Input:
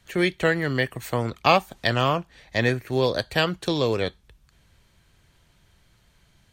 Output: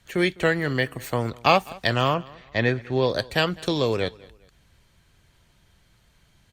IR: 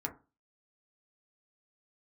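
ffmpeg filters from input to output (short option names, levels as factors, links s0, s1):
-filter_complex "[0:a]asettb=1/sr,asplit=3[s0][s1][s2];[s0]atrim=end=2.144[s3];[s1]atrim=start=2.14:end=3.1,asetpts=PTS-STARTPTS,afade=t=in:d=0.004:c=qsin,afade=t=out:st=0.956:d=0.004:c=qsin,lowpass=4100[s4];[s2]atrim=start=3.096[s5];[s3][s4]acrossfade=d=0.004:c1=hsin:c2=qsin[s6];[s6][s5]acrossfade=d=0.004:c1=qsin:c2=hsin,aecho=1:1:204|408:0.0708|0.0248" -ar 48000 -c:a libopus -b:a 64k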